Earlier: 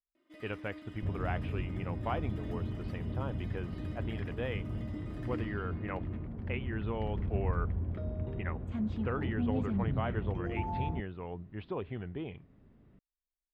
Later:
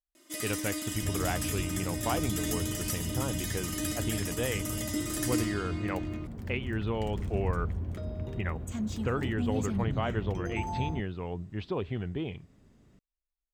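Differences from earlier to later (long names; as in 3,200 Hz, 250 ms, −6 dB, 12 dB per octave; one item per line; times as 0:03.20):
speech: add low-shelf EQ 450 Hz +6.5 dB
first sound +10.0 dB
master: remove high-frequency loss of the air 420 metres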